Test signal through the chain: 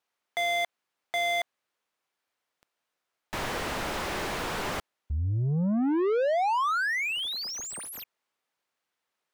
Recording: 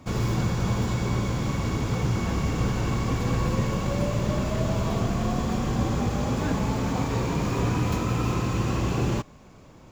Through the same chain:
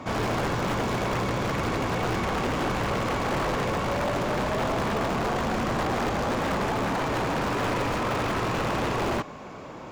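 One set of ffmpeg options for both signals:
-filter_complex "[0:a]aeval=exprs='(mod(10*val(0)+1,2)-1)/10':c=same,asplit=2[a][b];[b]highpass=f=720:p=1,volume=24dB,asoftclip=type=tanh:threshold=-20dB[c];[a][c]amix=inputs=2:normalize=0,lowpass=f=1.3k:p=1,volume=-6dB"

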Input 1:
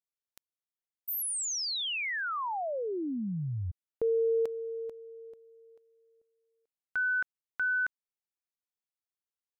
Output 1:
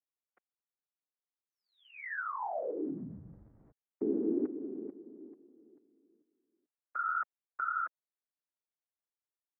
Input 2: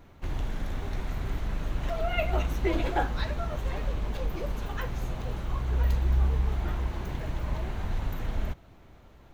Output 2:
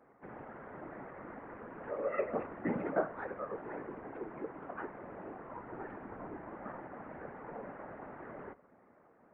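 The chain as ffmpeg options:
-af "aemphasis=mode=reproduction:type=75kf,afftfilt=real='hypot(re,im)*cos(2*PI*random(0))':imag='hypot(re,im)*sin(2*PI*random(1))':win_size=512:overlap=0.75,highpass=f=370:t=q:w=0.5412,highpass=f=370:t=q:w=1.307,lowpass=f=2.1k:t=q:w=0.5176,lowpass=f=2.1k:t=q:w=0.7071,lowpass=f=2.1k:t=q:w=1.932,afreqshift=-140,volume=3.5dB"

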